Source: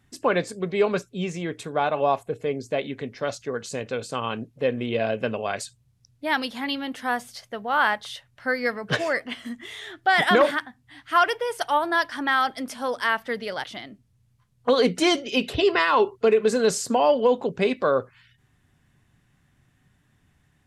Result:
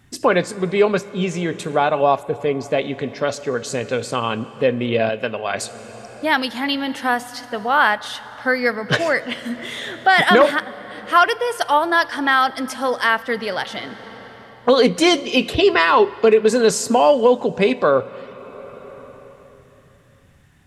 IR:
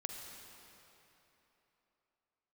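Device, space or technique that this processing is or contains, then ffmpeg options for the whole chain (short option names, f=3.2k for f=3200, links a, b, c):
ducked reverb: -filter_complex "[0:a]asplit=3[a][b][c];[1:a]atrim=start_sample=2205[d];[b][d]afir=irnorm=-1:irlink=0[e];[c]apad=whole_len=911210[f];[e][f]sidechaincompress=threshold=-33dB:ratio=4:attack=29:release=899,volume=0.5dB[g];[a][g]amix=inputs=2:normalize=0,asettb=1/sr,asplit=3[h][i][j];[h]atrim=end=5.094[k];[i]atrim=start=5.09:end=5.54,asetpts=PTS-STARTPTS,afade=t=in:d=0.004:c=qsin,afade=t=out:st=0.446:d=0.004:c=qsin,lowshelf=f=480:g=-8.5[l];[j]atrim=start=5.536[m];[k][l]acrossfade=d=0.004:c1=hsin:c2=qsin[n];[n][m]acrossfade=d=0.004:c1=qsin:c2=hsin,volume=4.5dB"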